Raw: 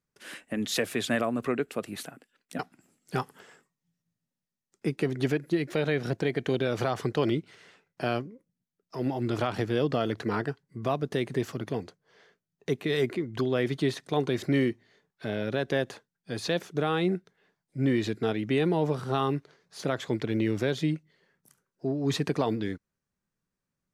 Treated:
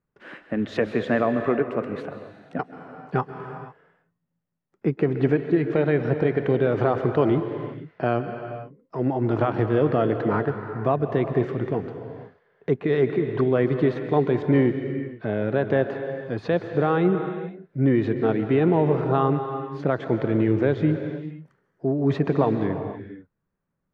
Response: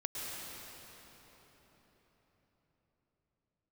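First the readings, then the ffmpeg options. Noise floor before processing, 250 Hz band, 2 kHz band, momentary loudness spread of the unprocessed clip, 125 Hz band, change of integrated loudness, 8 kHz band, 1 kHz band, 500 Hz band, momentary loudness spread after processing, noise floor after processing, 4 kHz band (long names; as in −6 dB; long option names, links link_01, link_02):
below −85 dBFS, +6.0 dB, +2.5 dB, 12 LU, +7.0 dB, +6.0 dB, below −20 dB, +6.5 dB, +7.0 dB, 13 LU, −78 dBFS, can't be measured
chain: -filter_complex "[0:a]lowpass=1500,asplit=2[link_01][link_02];[link_02]equalizer=frequency=240:width_type=o:width=0.39:gain=-8[link_03];[1:a]atrim=start_sample=2205,afade=type=out:start_time=0.45:duration=0.01,atrim=end_sample=20286,asetrate=35280,aresample=44100[link_04];[link_03][link_04]afir=irnorm=-1:irlink=0,volume=-5.5dB[link_05];[link_01][link_05]amix=inputs=2:normalize=0,volume=3.5dB"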